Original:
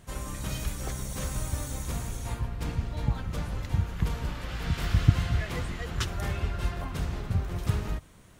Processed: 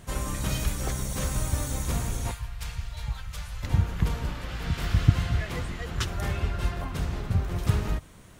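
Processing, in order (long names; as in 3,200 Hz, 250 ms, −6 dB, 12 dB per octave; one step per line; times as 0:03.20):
0:02.31–0:03.63: guitar amp tone stack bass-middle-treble 10-0-10
speech leveller within 5 dB 2 s
level +1.5 dB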